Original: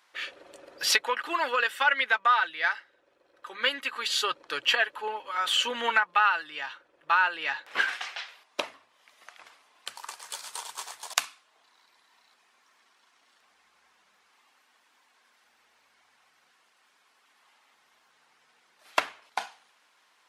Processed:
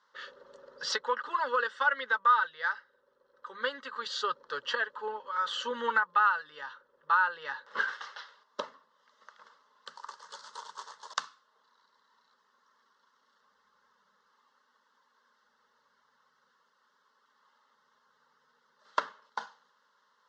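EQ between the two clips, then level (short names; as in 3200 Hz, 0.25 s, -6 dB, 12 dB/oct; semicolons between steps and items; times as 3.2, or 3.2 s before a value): LPF 6800 Hz 24 dB/oct; air absorption 110 m; fixed phaser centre 480 Hz, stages 8; 0.0 dB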